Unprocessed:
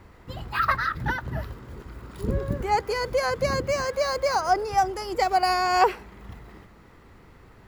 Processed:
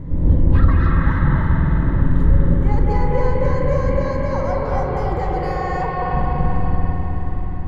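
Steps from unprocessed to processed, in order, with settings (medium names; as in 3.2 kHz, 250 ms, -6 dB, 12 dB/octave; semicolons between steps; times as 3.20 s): wind noise 230 Hz -32 dBFS; rippled EQ curve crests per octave 1.1, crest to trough 7 dB; compression 3:1, threshold -26 dBFS, peak gain reduction 11 dB; RIAA curve playback; flutter echo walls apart 7.3 m, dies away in 0.27 s; reverberation RT60 5.1 s, pre-delay 177 ms, DRR -5 dB; trim -2 dB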